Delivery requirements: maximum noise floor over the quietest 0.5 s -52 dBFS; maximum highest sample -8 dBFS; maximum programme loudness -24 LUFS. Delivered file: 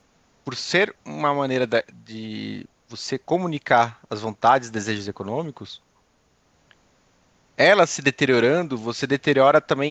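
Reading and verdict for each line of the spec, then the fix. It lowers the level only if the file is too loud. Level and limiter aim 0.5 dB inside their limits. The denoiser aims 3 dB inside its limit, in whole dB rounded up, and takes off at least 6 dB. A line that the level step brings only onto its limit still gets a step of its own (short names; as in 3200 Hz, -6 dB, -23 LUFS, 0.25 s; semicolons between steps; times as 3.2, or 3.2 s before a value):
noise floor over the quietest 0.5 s -63 dBFS: OK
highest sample -3.0 dBFS: fail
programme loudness -21.0 LUFS: fail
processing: gain -3.5 dB; limiter -8.5 dBFS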